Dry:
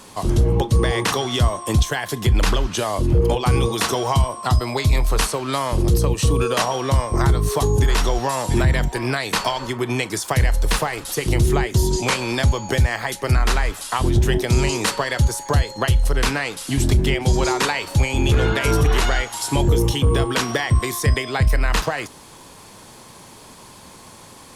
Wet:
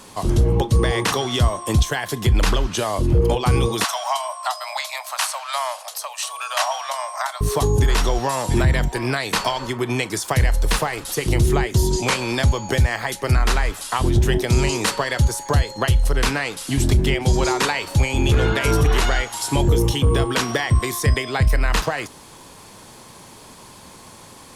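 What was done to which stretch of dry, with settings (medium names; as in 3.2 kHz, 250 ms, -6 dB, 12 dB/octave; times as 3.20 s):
3.84–7.41 s: steep high-pass 600 Hz 96 dB/octave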